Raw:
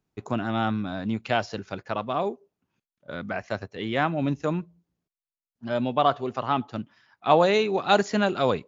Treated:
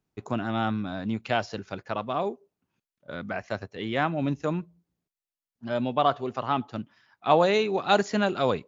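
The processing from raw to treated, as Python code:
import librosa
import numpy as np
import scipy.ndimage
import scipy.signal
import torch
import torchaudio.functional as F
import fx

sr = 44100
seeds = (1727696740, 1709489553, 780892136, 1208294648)

y = x * 10.0 ** (-1.5 / 20.0)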